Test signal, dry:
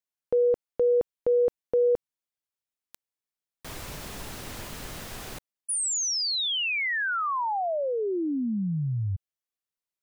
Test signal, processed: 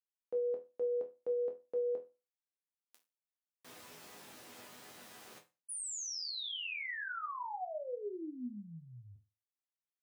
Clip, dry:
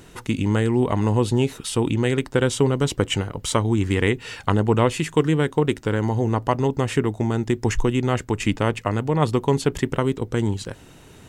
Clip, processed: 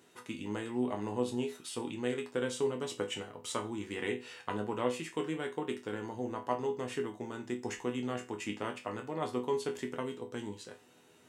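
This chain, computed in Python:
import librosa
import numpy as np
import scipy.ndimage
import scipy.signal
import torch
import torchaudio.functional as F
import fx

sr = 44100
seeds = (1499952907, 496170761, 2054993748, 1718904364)

y = scipy.signal.sosfilt(scipy.signal.butter(2, 230.0, 'highpass', fs=sr, output='sos'), x)
y = fx.resonator_bank(y, sr, root=40, chord='major', decay_s=0.28)
y = y * 10.0 ** (-2.0 / 20.0)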